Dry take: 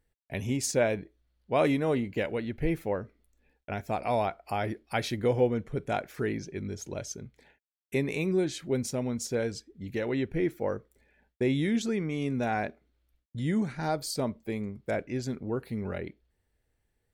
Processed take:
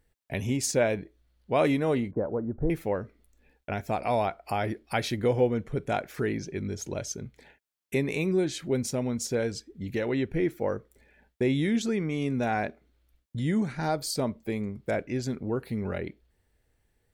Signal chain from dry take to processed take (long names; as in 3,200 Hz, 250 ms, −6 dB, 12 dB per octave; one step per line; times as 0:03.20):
in parallel at −1.5 dB: downward compressor, threshold −39 dBFS, peak gain reduction 18 dB
0:02.11–0:02.70: on the sum: Butterworth low-pass 1,300 Hz 48 dB per octave